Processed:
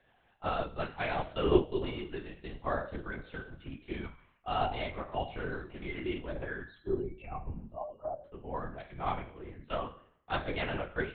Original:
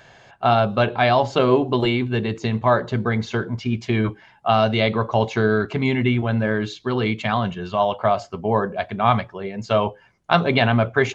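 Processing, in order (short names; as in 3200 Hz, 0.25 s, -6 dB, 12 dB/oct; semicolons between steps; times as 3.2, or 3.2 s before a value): 6.61–8.25 spectral contrast raised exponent 2.8; resonator 190 Hz, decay 0.65 s, harmonics all, mix 90%; LPC vocoder at 8 kHz whisper; upward expander 1.5:1, over -41 dBFS; gain +4 dB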